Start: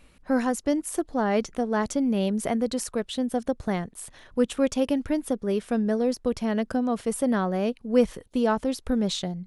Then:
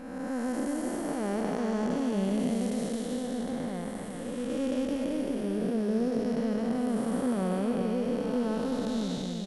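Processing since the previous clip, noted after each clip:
spectrum smeared in time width 544 ms
on a send: single-tap delay 387 ms −5.5 dB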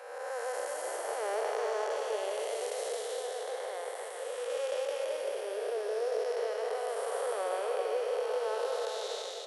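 Butterworth high-pass 420 Hz 72 dB per octave
convolution reverb RT60 3.2 s, pre-delay 115 ms, DRR 10 dB
level +1.5 dB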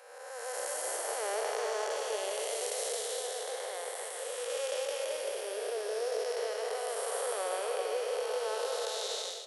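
automatic gain control gain up to 7 dB
high-shelf EQ 2,800 Hz +10.5 dB
level −9 dB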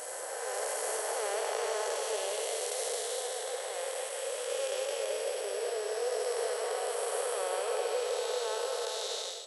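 steady tone 7,900 Hz −53 dBFS
on a send: backwards echo 760 ms −5.5 dB

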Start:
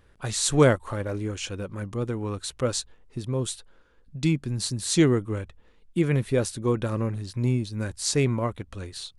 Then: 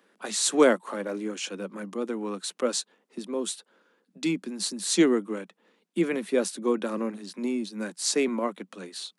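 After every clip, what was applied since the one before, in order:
Butterworth high-pass 180 Hz 96 dB per octave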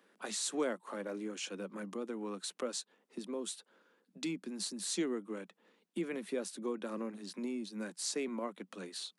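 downward compressor 2 to 1, threshold −36 dBFS, peak gain reduction 12.5 dB
level −4 dB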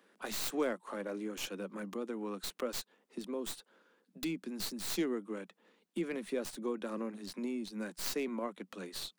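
stylus tracing distortion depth 0.18 ms
level +1 dB

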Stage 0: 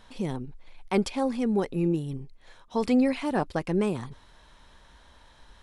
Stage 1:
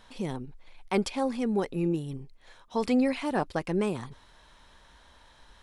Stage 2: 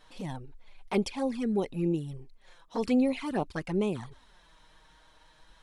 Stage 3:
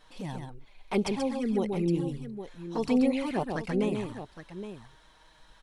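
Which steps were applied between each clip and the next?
low-shelf EQ 390 Hz −3.5 dB
flanger swept by the level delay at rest 7.1 ms, full sweep at −23 dBFS
multi-tap delay 134/816 ms −5/−11.5 dB

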